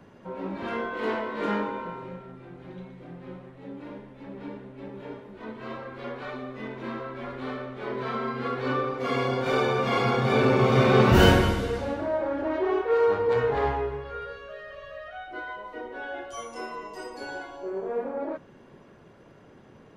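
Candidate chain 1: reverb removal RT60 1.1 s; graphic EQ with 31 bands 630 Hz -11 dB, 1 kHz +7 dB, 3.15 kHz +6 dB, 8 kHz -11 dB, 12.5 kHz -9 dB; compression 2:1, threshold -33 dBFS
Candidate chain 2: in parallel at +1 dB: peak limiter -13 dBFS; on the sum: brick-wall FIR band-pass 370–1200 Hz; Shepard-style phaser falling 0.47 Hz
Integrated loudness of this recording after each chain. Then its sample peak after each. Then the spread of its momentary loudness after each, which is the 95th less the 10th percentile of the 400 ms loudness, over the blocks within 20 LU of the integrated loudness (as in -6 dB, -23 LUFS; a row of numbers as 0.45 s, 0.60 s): -35.5 LUFS, -25.0 LUFS; -16.0 dBFS, -7.5 dBFS; 14 LU, 20 LU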